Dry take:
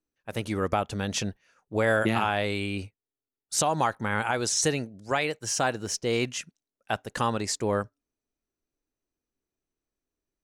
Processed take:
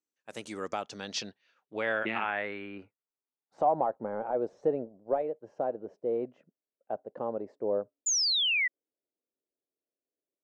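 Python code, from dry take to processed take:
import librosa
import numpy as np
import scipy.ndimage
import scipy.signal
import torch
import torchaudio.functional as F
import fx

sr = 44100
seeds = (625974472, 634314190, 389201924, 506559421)

y = scipy.signal.sosfilt(scipy.signal.butter(2, 240.0, 'highpass', fs=sr, output='sos'), x)
y = fx.leveller(y, sr, passes=1, at=(3.58, 5.22))
y = fx.filter_sweep_lowpass(y, sr, from_hz=7500.0, to_hz=580.0, start_s=0.56, end_s=4.0, q=2.6)
y = fx.spec_paint(y, sr, seeds[0], shape='fall', start_s=8.06, length_s=0.62, low_hz=1900.0, high_hz=7200.0, level_db=-19.0)
y = F.gain(torch.from_numpy(y), -8.0).numpy()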